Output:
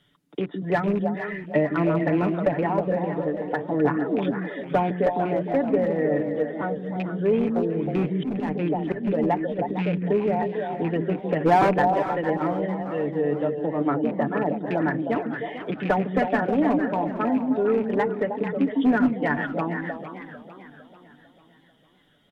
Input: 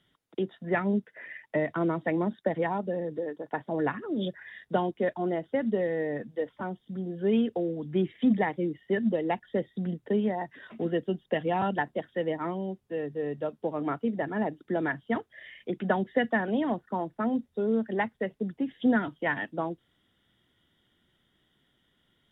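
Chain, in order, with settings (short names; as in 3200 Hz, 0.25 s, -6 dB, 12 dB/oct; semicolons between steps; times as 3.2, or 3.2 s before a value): rattling part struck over -31 dBFS, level -28 dBFS; treble ducked by the level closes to 1600 Hz, closed at -25 dBFS; in parallel at -9.5 dB: soft clip -21 dBFS, distortion -16 dB; 11.41–11.78 on the sum: spectral gain 230–2700 Hz +7 dB; on a send: delay with a stepping band-pass 0.157 s, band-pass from 230 Hz, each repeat 1.4 oct, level -1 dB; on the sum: one-sided clip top -18 dBFS; comb 6.9 ms, depth 54%; 8.02–9.59 auto swell 0.136 s; warbling echo 0.449 s, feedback 48%, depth 178 cents, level -12.5 dB; gain +2 dB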